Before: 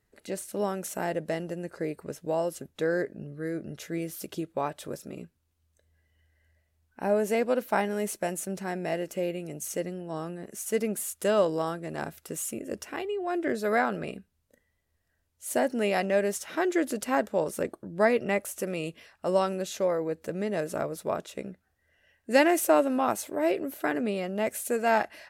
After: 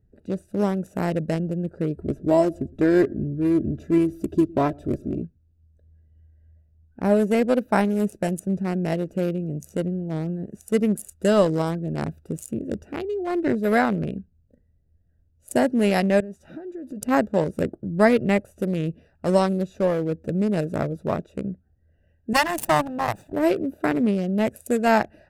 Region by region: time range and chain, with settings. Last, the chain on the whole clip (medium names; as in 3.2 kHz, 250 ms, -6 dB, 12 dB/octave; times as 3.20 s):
1.97–5.22 s: bass shelf 420 Hz +6.5 dB + comb 3 ms + feedback delay 112 ms, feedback 36%, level -23 dB
16.20–17.02 s: band-stop 440 Hz, Q 6.6 + compression 10:1, threshold -37 dBFS
22.33–23.33 s: comb filter that takes the minimum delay 1.1 ms + high-pass 350 Hz 6 dB/octave
whole clip: local Wiener filter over 41 samples; tone controls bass +10 dB, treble +5 dB; trim +5 dB